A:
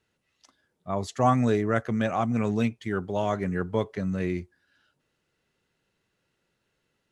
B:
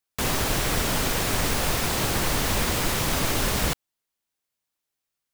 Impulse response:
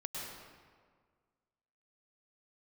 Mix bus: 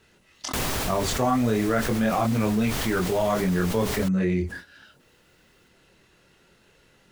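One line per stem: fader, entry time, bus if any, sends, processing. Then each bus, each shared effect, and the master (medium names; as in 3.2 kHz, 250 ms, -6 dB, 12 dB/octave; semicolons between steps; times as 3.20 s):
+0.5 dB, 0.00 s, no send, chorus voices 6, 1 Hz, delay 25 ms, depth 3 ms
-8.0 dB, 0.35 s, no send, auto duck -11 dB, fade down 0.90 s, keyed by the first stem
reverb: none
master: gate with hold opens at -49 dBFS; level flattener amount 70%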